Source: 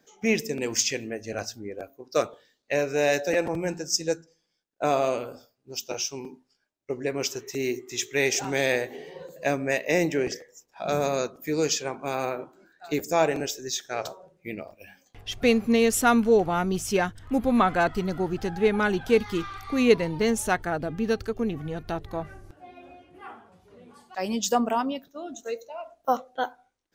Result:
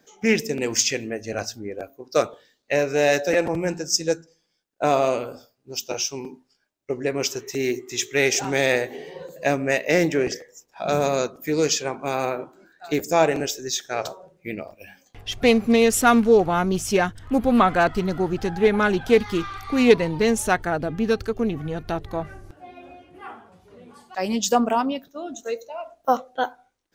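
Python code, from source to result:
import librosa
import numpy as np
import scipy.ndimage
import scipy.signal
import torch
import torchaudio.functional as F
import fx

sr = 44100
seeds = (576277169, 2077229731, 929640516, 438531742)

y = fx.doppler_dist(x, sr, depth_ms=0.14)
y = y * librosa.db_to_amplitude(4.0)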